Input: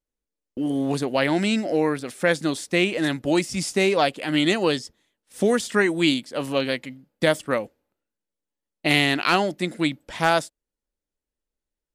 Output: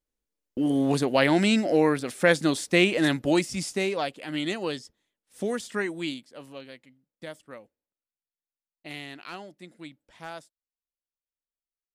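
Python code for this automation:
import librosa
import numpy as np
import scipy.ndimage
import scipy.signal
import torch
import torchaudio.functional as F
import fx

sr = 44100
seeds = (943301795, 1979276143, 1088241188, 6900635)

y = fx.gain(x, sr, db=fx.line((3.15, 0.5), (4.03, -9.0), (5.84, -9.0), (6.67, -20.0)))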